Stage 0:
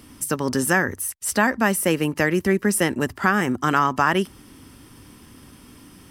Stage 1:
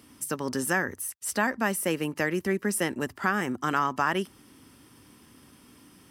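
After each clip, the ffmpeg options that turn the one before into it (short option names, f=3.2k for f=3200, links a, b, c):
-af "highpass=f=140:p=1,volume=-6.5dB"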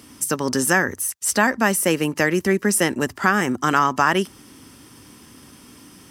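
-af "equalizer=f=6.4k:w=1.5:g=5,volume=8dB"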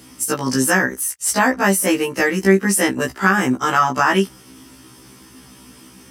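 -af "afftfilt=real='re*1.73*eq(mod(b,3),0)':imag='im*1.73*eq(mod(b,3),0)':win_size=2048:overlap=0.75,volume=4.5dB"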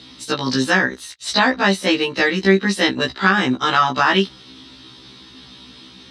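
-af "lowpass=f=3.9k:t=q:w=14,volume=-1dB"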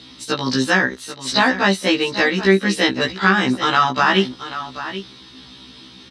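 -af "aecho=1:1:784:0.237"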